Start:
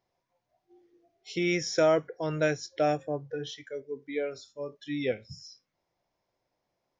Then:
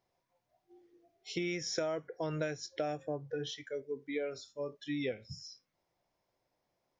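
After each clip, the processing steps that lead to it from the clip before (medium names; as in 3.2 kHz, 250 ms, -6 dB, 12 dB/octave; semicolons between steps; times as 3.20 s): compression 8:1, threshold -31 dBFS, peak gain reduction 12 dB; trim -1 dB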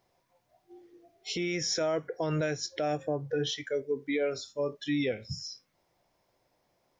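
peak limiter -30 dBFS, peak gain reduction 9 dB; trim +8.5 dB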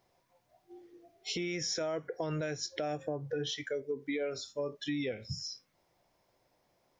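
compression 3:1, threshold -33 dBFS, peak gain reduction 6 dB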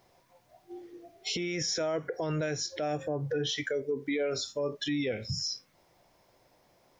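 peak limiter -31.5 dBFS, peak gain reduction 9 dB; trim +8 dB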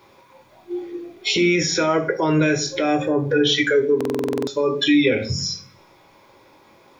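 reverberation RT60 0.45 s, pre-delay 3 ms, DRR 3 dB; buffer glitch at 3.96 s, samples 2048, times 10; trim +6 dB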